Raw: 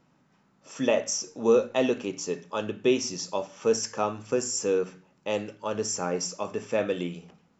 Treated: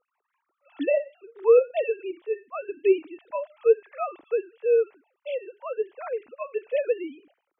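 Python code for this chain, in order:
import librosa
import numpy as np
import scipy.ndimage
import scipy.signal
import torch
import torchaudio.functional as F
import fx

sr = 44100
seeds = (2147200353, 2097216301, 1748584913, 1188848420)

y = fx.sine_speech(x, sr)
y = y * librosa.db_to_amplitude(2.0)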